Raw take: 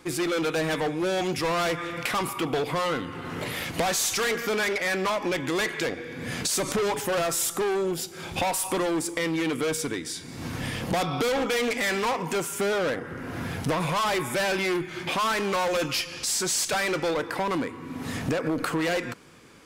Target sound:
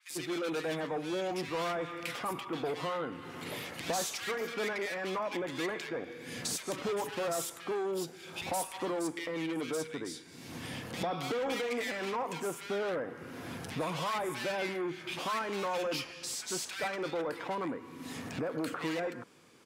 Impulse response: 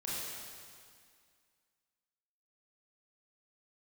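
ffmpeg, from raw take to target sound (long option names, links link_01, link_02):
-filter_complex "[0:a]highpass=frequency=180:poles=1,acrossover=split=1700[link_01][link_02];[link_01]adelay=100[link_03];[link_03][link_02]amix=inputs=2:normalize=0,adynamicequalizer=threshold=0.00631:dfrequency=4000:dqfactor=0.7:tfrequency=4000:tqfactor=0.7:attack=5:release=100:ratio=0.375:range=3:mode=cutabove:tftype=highshelf,volume=-7dB"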